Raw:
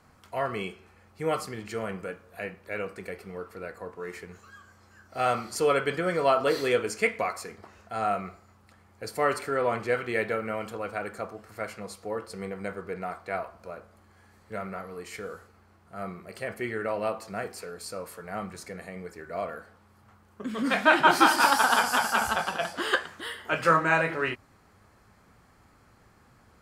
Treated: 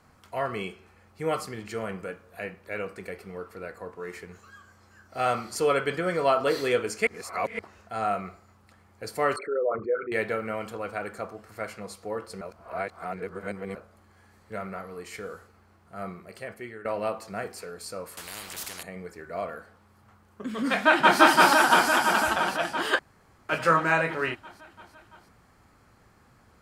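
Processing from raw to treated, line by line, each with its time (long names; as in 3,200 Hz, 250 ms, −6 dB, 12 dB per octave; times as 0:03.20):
0:07.07–0:07.59: reverse
0:09.36–0:10.12: spectral envelope exaggerated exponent 3
0:12.41–0:13.75: reverse
0:16.08–0:16.85: fade out, to −12.5 dB
0:18.17–0:18.83: every bin compressed towards the loudest bin 10 to 1
0:20.69–0:21.20: delay throw 340 ms, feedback 70%, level 0 dB
0:22.99–0:23.49: fill with room tone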